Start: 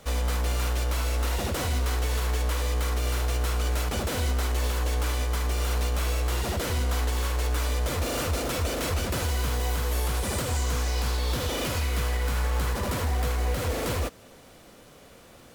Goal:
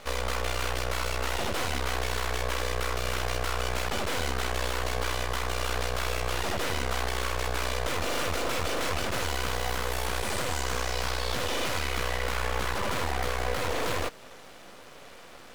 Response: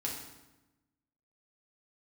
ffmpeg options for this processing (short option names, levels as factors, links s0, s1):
-filter_complex "[0:a]asplit=2[s0][s1];[s1]highpass=f=720:p=1,volume=5.62,asoftclip=type=tanh:threshold=0.141[s2];[s0][s2]amix=inputs=2:normalize=0,lowpass=f=3000:p=1,volume=0.501,aeval=exprs='max(val(0),0)':c=same,volume=1.19"